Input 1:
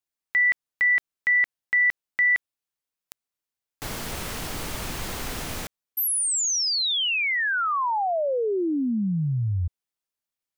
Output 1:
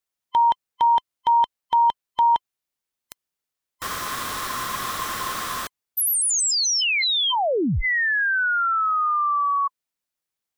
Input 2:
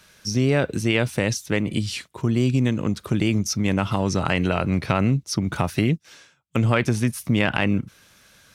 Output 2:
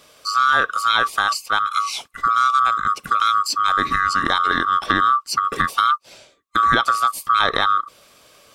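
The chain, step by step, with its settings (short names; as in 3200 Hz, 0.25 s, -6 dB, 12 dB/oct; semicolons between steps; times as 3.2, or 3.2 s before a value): band-swap scrambler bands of 1000 Hz; gain +3 dB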